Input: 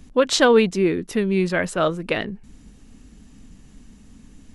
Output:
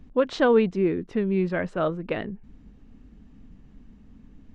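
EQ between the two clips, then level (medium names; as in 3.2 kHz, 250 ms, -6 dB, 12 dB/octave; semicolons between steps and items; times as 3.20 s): tape spacing loss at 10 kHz 31 dB; -2.5 dB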